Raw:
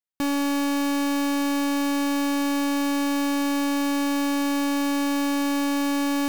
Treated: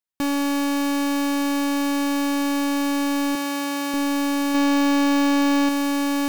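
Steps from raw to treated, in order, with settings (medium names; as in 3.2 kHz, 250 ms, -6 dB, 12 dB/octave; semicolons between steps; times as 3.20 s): 3.35–3.94 s: high-pass 420 Hz 6 dB/octave; 4.54–5.69 s: comb 3.5 ms, depth 55%; trim +1.5 dB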